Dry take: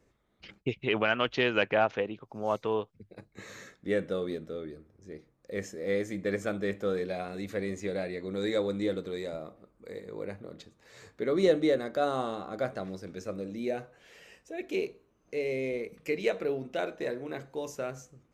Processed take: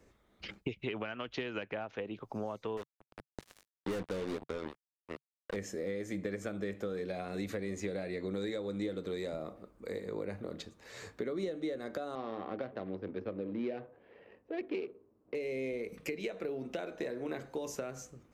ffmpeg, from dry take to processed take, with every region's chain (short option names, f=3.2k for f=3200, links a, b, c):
-filter_complex "[0:a]asettb=1/sr,asplit=3[a][b][c];[a]atrim=end=2.774[d];[b]atrim=start=2.77:end=5.56,asetpts=PTS-STARTPTS,afade=t=in:d=0.004:c=qsin,afade=t=out:st=2.786:d=0.004:c=qsin,aeval=exprs='(tanh(31.6*val(0)+0.15)-tanh(0.15))/31.6':c=same,acrusher=bits=5:mix=0:aa=0.5[e];[c]atrim=start=5.556[f];[d][e]acrossfade=d=0.004:c1=hsin:c2=qsin[g];[g][f]acrossfade=d=0.004:c1=qsin:c2=hsin,asettb=1/sr,asplit=3[h][i][j];[h]atrim=end=12.154[k];[i]atrim=start=12.15:end=15.35,asetpts=PTS-STARTPTS,afade=t=in:d=0.004:c=qsin,afade=t=out:st=3.196:d=0.004:c=qsin,adynamicsmooth=sensitivity=8:basefreq=770,highpass=110,equalizer=f=170:t=q:w=4:g=-8,equalizer=f=670:t=q:w=4:g=-3,equalizer=f=1.4k:t=q:w=4:g=-4,lowpass=f=4.3k:w=0.5412,lowpass=f=4.3k:w=1.3066[l];[j]atrim=start=15.346[m];[k][l]acrossfade=d=0.004:c1=hsin:c2=qsin[n];[n][m]acrossfade=d=0.004:c1=qsin:c2=hsin,acompressor=threshold=-37dB:ratio=6,equalizer=f=140:t=o:w=0.28:g=-5.5,acrossover=split=320[o][p];[p]acompressor=threshold=-41dB:ratio=6[q];[o][q]amix=inputs=2:normalize=0,volume=4.5dB"